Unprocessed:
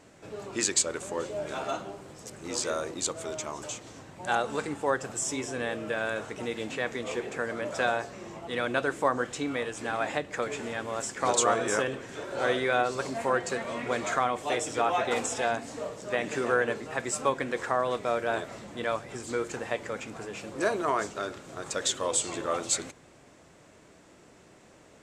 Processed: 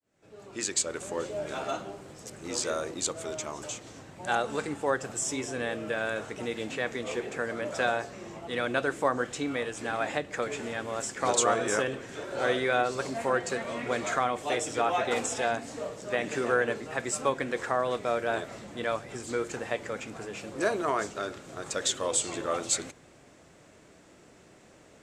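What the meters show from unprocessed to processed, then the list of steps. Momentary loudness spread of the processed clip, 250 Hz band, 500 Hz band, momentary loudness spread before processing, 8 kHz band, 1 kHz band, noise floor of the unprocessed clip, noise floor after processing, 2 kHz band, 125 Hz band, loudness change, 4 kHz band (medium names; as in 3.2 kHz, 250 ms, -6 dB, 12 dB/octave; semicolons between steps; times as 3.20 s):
10 LU, 0.0 dB, 0.0 dB, 11 LU, -0.5 dB, -1.0 dB, -56 dBFS, -56 dBFS, 0.0 dB, 0.0 dB, -0.5 dB, -0.5 dB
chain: fade-in on the opening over 1.09 s; peaking EQ 990 Hz -2.5 dB 0.42 oct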